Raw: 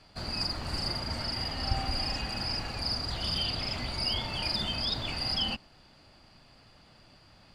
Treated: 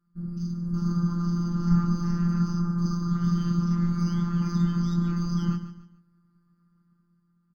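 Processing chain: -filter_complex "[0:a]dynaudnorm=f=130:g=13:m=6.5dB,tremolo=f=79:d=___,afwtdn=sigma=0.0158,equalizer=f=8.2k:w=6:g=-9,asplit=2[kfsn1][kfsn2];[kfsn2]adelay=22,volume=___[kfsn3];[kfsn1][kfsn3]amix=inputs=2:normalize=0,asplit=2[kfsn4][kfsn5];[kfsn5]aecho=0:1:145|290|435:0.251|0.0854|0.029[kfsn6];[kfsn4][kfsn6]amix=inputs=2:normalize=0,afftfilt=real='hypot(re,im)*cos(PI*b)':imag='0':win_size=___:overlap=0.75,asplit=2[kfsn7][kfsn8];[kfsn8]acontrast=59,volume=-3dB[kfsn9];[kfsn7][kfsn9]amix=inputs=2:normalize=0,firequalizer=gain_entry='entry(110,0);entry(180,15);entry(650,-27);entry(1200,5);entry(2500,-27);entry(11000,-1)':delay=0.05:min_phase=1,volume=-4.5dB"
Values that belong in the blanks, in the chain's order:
0.824, -5dB, 1024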